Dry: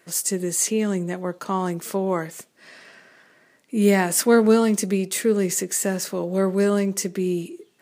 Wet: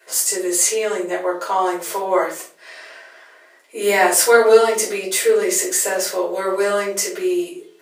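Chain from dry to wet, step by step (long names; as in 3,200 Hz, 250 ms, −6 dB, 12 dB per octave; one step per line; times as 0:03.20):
high-pass filter 440 Hz 24 dB per octave
rectangular room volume 250 cubic metres, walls furnished, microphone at 5 metres
level −1 dB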